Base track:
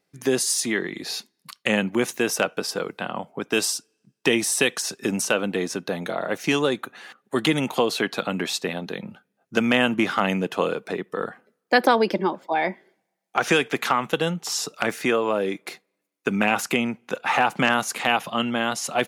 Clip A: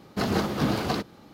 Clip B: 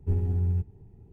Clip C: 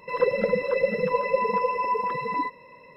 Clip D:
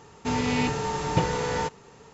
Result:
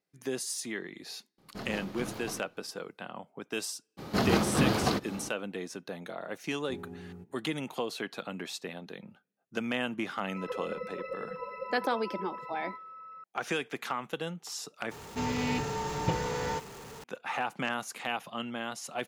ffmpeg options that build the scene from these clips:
-filter_complex "[1:a]asplit=2[s0][s1];[0:a]volume=0.237[s2];[s0]aeval=exprs='if(lt(val(0),0),0.708*val(0),val(0))':c=same[s3];[s1]acompressor=mode=upward:threshold=0.0282:ratio=2.5:attack=3.2:release=140:knee=2.83:detection=peak[s4];[2:a]highpass=f=180:w=0.5412,highpass=f=180:w=1.3066[s5];[3:a]aeval=exprs='val(0)+0.0398*sin(2*PI*1300*n/s)':c=same[s6];[4:a]aeval=exprs='val(0)+0.5*0.0158*sgn(val(0))':c=same[s7];[s2]asplit=2[s8][s9];[s8]atrim=end=14.914[s10];[s7]atrim=end=2.13,asetpts=PTS-STARTPTS,volume=0.473[s11];[s9]atrim=start=17.036[s12];[s3]atrim=end=1.33,asetpts=PTS-STARTPTS,volume=0.224,afade=t=in:d=0.004:c=hsin,afade=t=out:st=1.326:d=0.004:c=hsin,adelay=1380[s13];[s4]atrim=end=1.33,asetpts=PTS-STARTPTS,volume=0.944,afade=t=in:d=0.02,afade=t=out:st=1.31:d=0.02,adelay=175077S[s14];[s5]atrim=end=1.12,asetpts=PTS-STARTPTS,volume=0.562,afade=t=in:d=0.004:c=hsin,afade=t=out:st=1.116:d=0.004:c=hsin,adelay=6620[s15];[s6]atrim=end=2.96,asetpts=PTS-STARTPTS,volume=0.15,afade=t=in:d=0.004:c=hsin,afade=t=out:st=2.956:d=0.004:c=hsin,adelay=10280[s16];[s10][s11]acrossfade=d=0.004:c1=hsin:c2=hsin[s17];[s17][s12]acrossfade=d=0.004:c1=hsin:c2=hsin[s18];[s18][s13][s14][s15][s16]amix=inputs=5:normalize=0"

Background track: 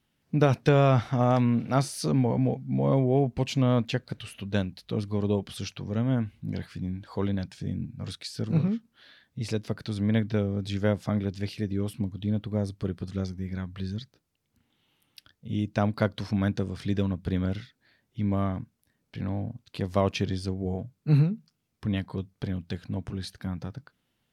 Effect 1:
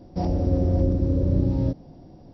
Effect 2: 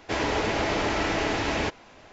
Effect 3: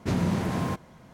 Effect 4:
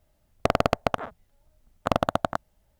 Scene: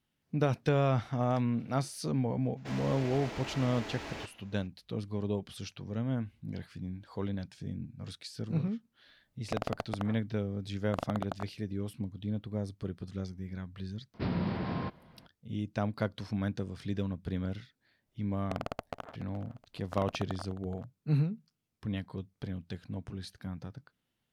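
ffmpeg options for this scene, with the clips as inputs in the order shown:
-filter_complex "[4:a]asplit=2[s0][s1];[0:a]volume=0.447[s2];[2:a]volume=20,asoftclip=hard,volume=0.0501[s3];[3:a]aresample=11025,aresample=44100[s4];[s1]aecho=1:1:424|848|1272:0.178|0.0676|0.0257[s5];[s3]atrim=end=2.12,asetpts=PTS-STARTPTS,volume=0.224,afade=t=in:d=0.02,afade=t=out:st=2.1:d=0.02,adelay=2560[s6];[s0]atrim=end=2.79,asetpts=PTS-STARTPTS,volume=0.211,afade=t=in:d=0.004:c=hsin,afade=t=out:st=2.786:d=0.004:c=hsin,adelay=9070[s7];[s4]atrim=end=1.13,asetpts=PTS-STARTPTS,volume=0.473,afade=t=in:d=0.004:c=hsin,afade=t=out:st=1.126:d=0.004:c=hsin,adelay=14140[s8];[s5]atrim=end=2.79,asetpts=PTS-STARTPTS,volume=0.158,afade=t=in:d=0.004:c=hsin,afade=t=out:st=2.786:d=0.004:c=hsin,adelay=18060[s9];[s2][s6][s7][s8][s9]amix=inputs=5:normalize=0"

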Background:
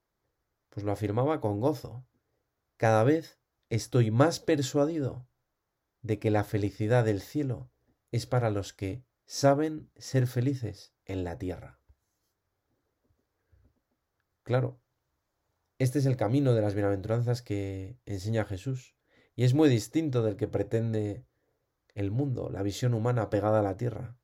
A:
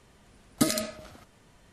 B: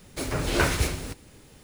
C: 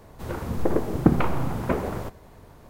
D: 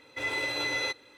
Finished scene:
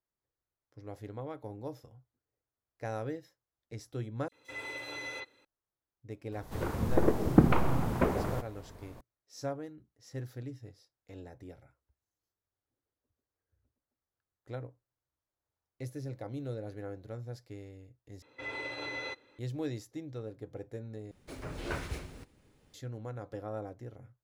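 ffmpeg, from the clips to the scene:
-filter_complex "[4:a]asplit=2[s0][s1];[0:a]volume=0.2[s2];[s0]acrossover=split=4500[s3][s4];[s3]adelay=40[s5];[s5][s4]amix=inputs=2:normalize=0[s6];[s1]aemphasis=mode=reproduction:type=75fm[s7];[2:a]highshelf=f=4000:g=-9[s8];[s2]asplit=4[s9][s10][s11][s12];[s9]atrim=end=4.284[s13];[s6]atrim=end=1.17,asetpts=PTS-STARTPTS,volume=0.335[s14];[s10]atrim=start=5.446:end=18.224[s15];[s7]atrim=end=1.17,asetpts=PTS-STARTPTS,volume=0.473[s16];[s11]atrim=start=19.386:end=21.114[s17];[s8]atrim=end=1.63,asetpts=PTS-STARTPTS,volume=0.224[s18];[s12]atrim=start=22.736[s19];[3:a]atrim=end=2.69,asetpts=PTS-STARTPTS,volume=0.708,afade=t=in:d=0.004:c=hsin,afade=t=out:st=2.686:d=0.004:c=hsin,adelay=6320[s20];[s13][s14]acrossfade=d=0.004:c1=hsin:c2=hsin[s21];[s21][s15]acrossfade=d=0.004:c1=hsin:c2=hsin[s22];[s22][s16]acrossfade=d=0.004:c1=hsin:c2=hsin[s23];[s23][s17]acrossfade=d=0.004:c1=hsin:c2=hsin[s24];[s24][s18]acrossfade=d=0.004:c1=hsin:c2=hsin[s25];[s25][s19]acrossfade=d=0.004:c1=hsin:c2=hsin[s26];[s26][s20]amix=inputs=2:normalize=0"

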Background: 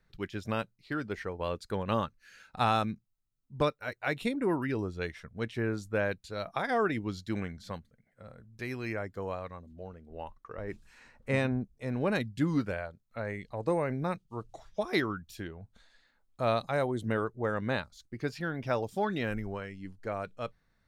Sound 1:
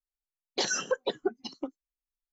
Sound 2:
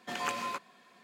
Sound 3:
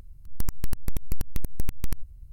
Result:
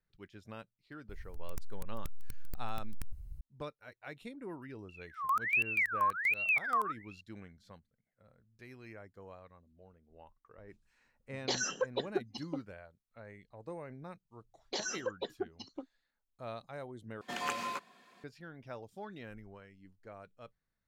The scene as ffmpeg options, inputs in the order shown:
-filter_complex "[3:a]asplit=2[s0][s1];[1:a]asplit=2[s2][s3];[0:a]volume=0.178[s4];[s0]asoftclip=type=tanh:threshold=0.0355[s5];[s1]aeval=exprs='val(0)*sin(2*PI*1900*n/s+1900*0.45/1.3*sin(2*PI*1.3*n/s))':c=same[s6];[s4]asplit=2[s7][s8];[s7]atrim=end=17.214[s9];[2:a]atrim=end=1.03,asetpts=PTS-STARTPTS,volume=0.794[s10];[s8]atrim=start=18.236[s11];[s5]atrim=end=2.32,asetpts=PTS-STARTPTS,volume=0.944,afade=t=in:d=0.004:c=hsin,afade=t=out:st=2.316:d=0.004:c=hsin,adelay=1090[s12];[s6]atrim=end=2.32,asetpts=PTS-STARTPTS,volume=0.282,afade=t=in:d=0.004:c=hsin,afade=t=out:st=2.316:d=0.004:c=hsin,adelay=215649S[s13];[s2]atrim=end=2.32,asetpts=PTS-STARTPTS,volume=0.562,afade=t=in:d=0.004:c=hsin,afade=t=out:st=2.316:d=0.004:c=hsin,adelay=480690S[s14];[s3]atrim=end=2.32,asetpts=PTS-STARTPTS,volume=0.376,afade=t=in:d=0.004:c=hsin,afade=t=out:st=2.316:d=0.004:c=hsin,adelay=14150[s15];[s9][s10]acrossfade=d=0.004:c1=hsin:c2=hsin[s16];[s16][s11]acrossfade=d=0.004:c1=hsin:c2=hsin[s17];[s17][s12][s13][s14][s15]amix=inputs=5:normalize=0"

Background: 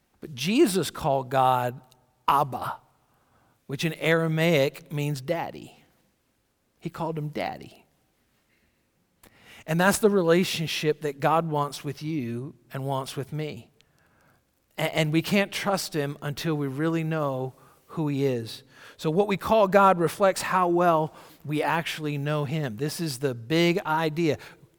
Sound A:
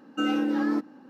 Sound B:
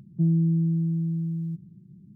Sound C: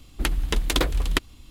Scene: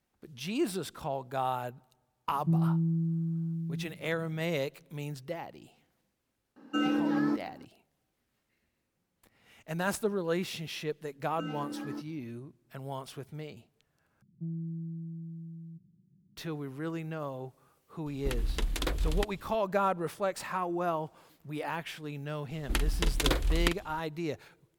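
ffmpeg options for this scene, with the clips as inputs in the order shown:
-filter_complex "[2:a]asplit=2[s0][s1];[1:a]asplit=2[s2][s3];[3:a]asplit=2[s4][s5];[0:a]volume=0.299[s6];[s0]aecho=1:1:81:0.596[s7];[s4]alimiter=limit=0.266:level=0:latency=1:release=86[s8];[s5]asplit=2[s9][s10];[s10]adelay=46,volume=0.299[s11];[s9][s11]amix=inputs=2:normalize=0[s12];[s6]asplit=2[s13][s14];[s13]atrim=end=14.224[s15];[s1]atrim=end=2.15,asetpts=PTS-STARTPTS,volume=0.168[s16];[s14]atrim=start=16.366[s17];[s7]atrim=end=2.15,asetpts=PTS-STARTPTS,volume=0.596,afade=t=in:d=0.004:c=hsin,afade=t=out:st=2.146:d=0.004:c=hsin,adelay=2280[s18];[s2]atrim=end=1.09,asetpts=PTS-STARTPTS,volume=0.708,afade=t=in:d=0.004:c=hsin,afade=t=out:st=1.086:d=0.004:c=hsin,adelay=6560[s19];[s3]atrim=end=1.09,asetpts=PTS-STARTPTS,volume=0.211,afade=t=in:d=0.004:c=hsin,afade=t=out:st=1.086:d=0.004:c=hsin,adelay=11210[s20];[s8]atrim=end=1.5,asetpts=PTS-STARTPTS,volume=0.501,afade=t=in:d=0.004:c=hsin,afade=t=out:st=1.496:d=0.004:c=hsin,adelay=18060[s21];[s12]atrim=end=1.5,asetpts=PTS-STARTPTS,volume=0.531,afade=t=in:d=0.004:c=hsin,afade=t=out:st=1.496:d=0.004:c=hsin,adelay=22500[s22];[s15][s16]acrossfade=d=0.004:c1=hsin:c2=hsin[s23];[s23][s17]acrossfade=d=0.004:c1=hsin:c2=hsin[s24];[s24][s18][s19][s20][s21][s22]amix=inputs=6:normalize=0"

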